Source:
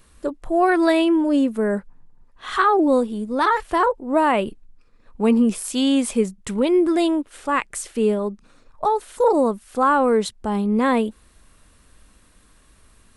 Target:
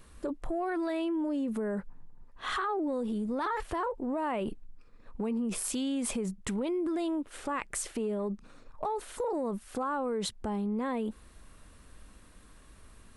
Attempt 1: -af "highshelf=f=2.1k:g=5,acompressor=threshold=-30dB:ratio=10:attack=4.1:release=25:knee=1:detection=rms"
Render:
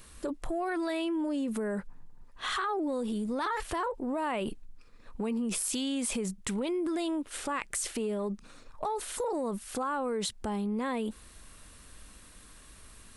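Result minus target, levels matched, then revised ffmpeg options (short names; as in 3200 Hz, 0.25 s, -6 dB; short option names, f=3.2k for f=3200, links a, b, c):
4000 Hz band +3.5 dB
-af "highshelf=f=2.1k:g=-4.5,acompressor=threshold=-30dB:ratio=10:attack=4.1:release=25:knee=1:detection=rms"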